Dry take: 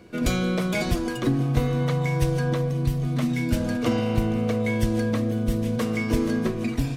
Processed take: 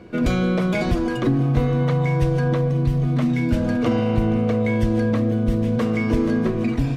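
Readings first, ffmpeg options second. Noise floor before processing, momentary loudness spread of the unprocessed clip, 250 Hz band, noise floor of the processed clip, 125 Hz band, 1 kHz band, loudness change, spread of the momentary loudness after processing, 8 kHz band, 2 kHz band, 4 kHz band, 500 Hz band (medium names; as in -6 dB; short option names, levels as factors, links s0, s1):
-30 dBFS, 2 LU, +4.5 dB, -24 dBFS, +4.0 dB, +3.5 dB, +4.0 dB, 1 LU, no reading, +1.5 dB, -1.5 dB, +4.0 dB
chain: -filter_complex "[0:a]lowpass=f=2100:p=1,asplit=2[s0][s1];[s1]alimiter=limit=0.0891:level=0:latency=1,volume=1.33[s2];[s0][s2]amix=inputs=2:normalize=0,volume=0.891"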